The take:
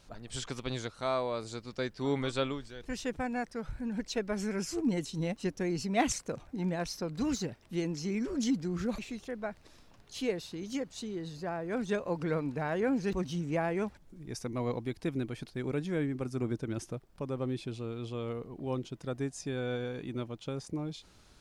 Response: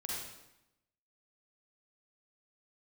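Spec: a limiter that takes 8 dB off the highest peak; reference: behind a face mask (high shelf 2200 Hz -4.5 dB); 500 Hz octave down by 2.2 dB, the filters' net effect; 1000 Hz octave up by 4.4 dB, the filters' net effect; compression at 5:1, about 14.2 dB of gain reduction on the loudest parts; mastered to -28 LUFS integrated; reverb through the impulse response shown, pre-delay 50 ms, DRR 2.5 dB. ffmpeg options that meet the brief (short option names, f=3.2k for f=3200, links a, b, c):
-filter_complex "[0:a]equalizer=f=500:t=o:g=-5,equalizer=f=1k:t=o:g=9,acompressor=threshold=-37dB:ratio=5,alimiter=level_in=9.5dB:limit=-24dB:level=0:latency=1,volume=-9.5dB,asplit=2[a][b];[1:a]atrim=start_sample=2205,adelay=50[c];[b][c]afir=irnorm=-1:irlink=0,volume=-4dB[d];[a][d]amix=inputs=2:normalize=0,highshelf=f=2.2k:g=-4.5,volume=14dB"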